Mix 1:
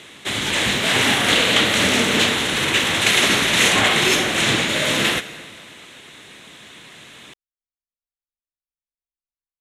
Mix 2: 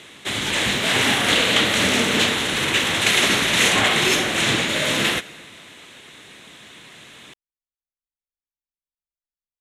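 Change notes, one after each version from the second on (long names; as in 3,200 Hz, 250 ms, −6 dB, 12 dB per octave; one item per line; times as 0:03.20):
background: send −6.5 dB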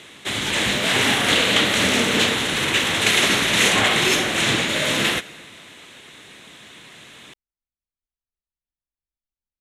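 speech +10.5 dB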